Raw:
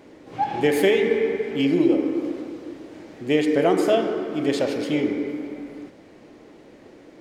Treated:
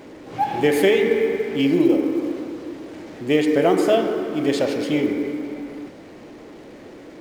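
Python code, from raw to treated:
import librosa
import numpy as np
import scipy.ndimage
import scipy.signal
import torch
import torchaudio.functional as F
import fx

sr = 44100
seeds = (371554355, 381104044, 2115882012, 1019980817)

y = fx.law_mismatch(x, sr, coded='mu')
y = F.gain(torch.from_numpy(y), 1.5).numpy()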